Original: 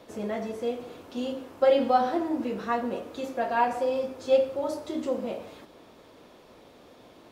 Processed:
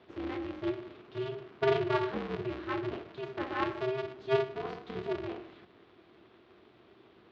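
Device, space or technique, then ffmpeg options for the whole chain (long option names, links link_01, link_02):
ring modulator pedal into a guitar cabinet: -af "aeval=exprs='val(0)*sgn(sin(2*PI*130*n/s))':channel_layout=same,highpass=84,equalizer=frequency=160:width_type=q:width=4:gain=-6,equalizer=frequency=350:width_type=q:width=4:gain=8,equalizer=frequency=540:width_type=q:width=4:gain=-8,equalizer=frequency=840:width_type=q:width=4:gain=-6,lowpass=frequency=3800:width=0.5412,lowpass=frequency=3800:width=1.3066,volume=-6.5dB"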